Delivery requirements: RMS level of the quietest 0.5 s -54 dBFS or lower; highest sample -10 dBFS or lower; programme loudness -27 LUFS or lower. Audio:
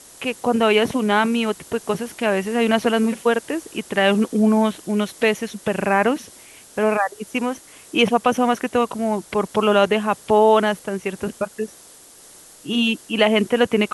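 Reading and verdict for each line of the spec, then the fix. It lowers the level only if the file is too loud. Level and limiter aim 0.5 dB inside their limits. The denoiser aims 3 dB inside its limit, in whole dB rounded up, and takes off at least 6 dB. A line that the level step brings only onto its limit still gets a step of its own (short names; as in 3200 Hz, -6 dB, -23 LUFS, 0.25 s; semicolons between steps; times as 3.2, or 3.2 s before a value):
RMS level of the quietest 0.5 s -46 dBFS: fail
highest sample -4.5 dBFS: fail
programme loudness -20.0 LUFS: fail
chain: denoiser 6 dB, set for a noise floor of -46 dBFS; gain -7.5 dB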